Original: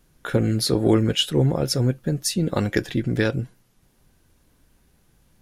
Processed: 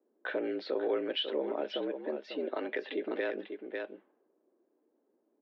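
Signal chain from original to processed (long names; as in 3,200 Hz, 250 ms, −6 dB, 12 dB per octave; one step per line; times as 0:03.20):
single-tap delay 546 ms −11 dB
in parallel at +1 dB: downward compressor, threshold −32 dBFS, peak gain reduction 17.5 dB
on the sum: brickwall limiter −12.5 dBFS, peak gain reduction 8 dB
single-sideband voice off tune +74 Hz 250–3,400 Hz
low-pass that shuts in the quiet parts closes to 420 Hz, open at −25.5 dBFS
level −8.5 dB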